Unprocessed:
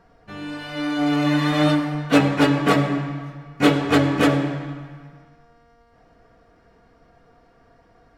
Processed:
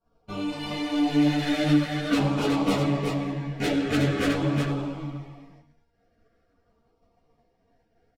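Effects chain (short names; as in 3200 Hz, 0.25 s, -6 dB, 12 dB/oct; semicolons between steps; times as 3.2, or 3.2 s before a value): expander -43 dBFS; in parallel at +1.5 dB: compressor, threshold -29 dBFS, peak gain reduction 17.5 dB; on the sum: soft clip -16 dBFS, distortion -10 dB; LFO notch saw down 0.46 Hz 830–2000 Hz; on a send: echo 0.368 s -5 dB; on the sum: ensemble effect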